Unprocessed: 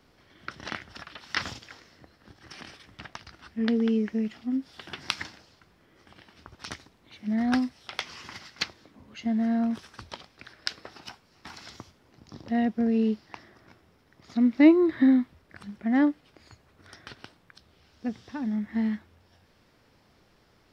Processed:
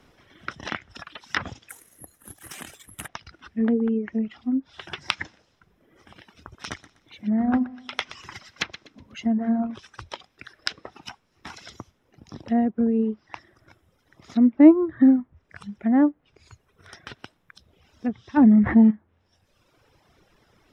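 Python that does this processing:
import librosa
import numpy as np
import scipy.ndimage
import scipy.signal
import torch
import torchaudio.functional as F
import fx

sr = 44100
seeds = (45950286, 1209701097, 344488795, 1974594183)

y = fx.resample_bad(x, sr, factor=4, down='filtered', up='zero_stuff', at=(1.69, 3.08))
y = fx.echo_feedback(y, sr, ms=123, feedback_pct=43, wet_db=-10, at=(6.56, 9.63), fade=0.02)
y = fx.env_flatten(y, sr, amount_pct=70, at=(18.36, 18.9), fade=0.02)
y = fx.dereverb_blind(y, sr, rt60_s=1.3)
y = fx.notch(y, sr, hz=4500.0, q=5.7)
y = fx.env_lowpass_down(y, sr, base_hz=1100.0, full_db=-25.0)
y = y * 10.0 ** (5.0 / 20.0)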